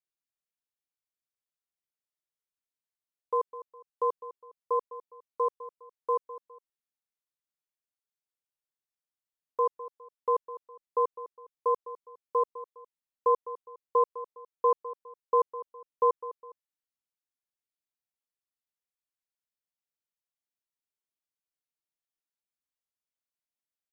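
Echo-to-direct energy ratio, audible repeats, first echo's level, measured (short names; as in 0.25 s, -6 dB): -14.5 dB, 2, -15.0 dB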